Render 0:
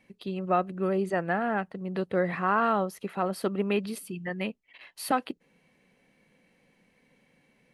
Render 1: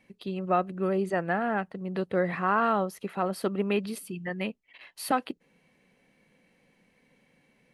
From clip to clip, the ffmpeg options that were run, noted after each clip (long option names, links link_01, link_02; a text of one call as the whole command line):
ffmpeg -i in.wav -af anull out.wav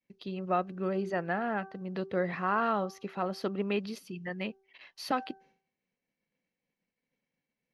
ffmpeg -i in.wav -af "agate=range=-33dB:threshold=-53dB:ratio=3:detection=peak,highshelf=frequency=7100:width_type=q:width=3:gain=-7,bandreject=frequency=386.7:width_type=h:width=4,bandreject=frequency=773.4:width_type=h:width=4,bandreject=frequency=1160.1:width_type=h:width=4,bandreject=frequency=1546.8:width_type=h:width=4,volume=-4dB" out.wav